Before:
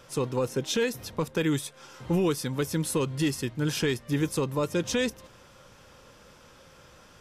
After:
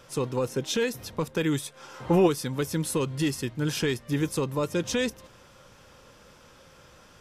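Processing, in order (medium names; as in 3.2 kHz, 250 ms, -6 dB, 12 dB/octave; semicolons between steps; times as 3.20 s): 1.74–2.26 s: peaking EQ 850 Hz +2.5 dB -> +12 dB 2.6 oct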